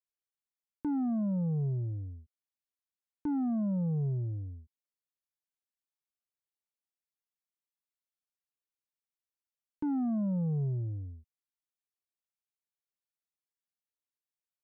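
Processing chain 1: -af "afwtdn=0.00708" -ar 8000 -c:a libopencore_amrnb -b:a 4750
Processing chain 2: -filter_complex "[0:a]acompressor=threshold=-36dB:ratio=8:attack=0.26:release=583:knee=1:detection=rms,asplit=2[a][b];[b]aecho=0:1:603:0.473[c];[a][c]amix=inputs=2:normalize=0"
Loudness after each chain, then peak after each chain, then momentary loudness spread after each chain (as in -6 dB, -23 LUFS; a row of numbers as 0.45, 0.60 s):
-35.0, -39.5 LUFS; -25.0, -31.5 dBFS; 13, 13 LU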